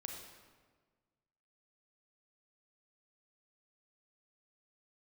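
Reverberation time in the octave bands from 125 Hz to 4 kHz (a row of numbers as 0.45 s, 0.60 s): 1.9 s, 1.7 s, 1.6 s, 1.4 s, 1.2 s, 1.0 s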